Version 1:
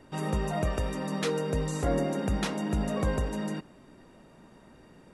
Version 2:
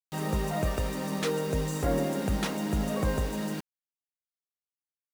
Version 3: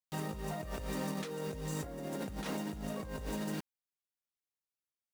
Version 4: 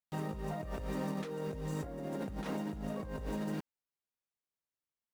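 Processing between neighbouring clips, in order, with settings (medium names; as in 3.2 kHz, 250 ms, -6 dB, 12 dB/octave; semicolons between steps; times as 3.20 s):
bit crusher 7-bit
compressor with a negative ratio -33 dBFS, ratio -1; trim -6.5 dB
treble shelf 2.5 kHz -10 dB; trim +1 dB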